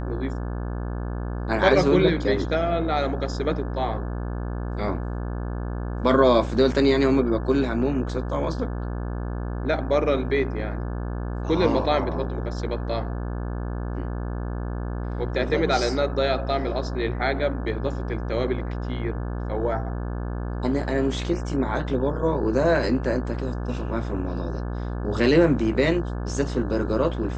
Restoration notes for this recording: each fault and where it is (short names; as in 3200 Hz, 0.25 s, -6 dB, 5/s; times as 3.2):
buzz 60 Hz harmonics 29 -29 dBFS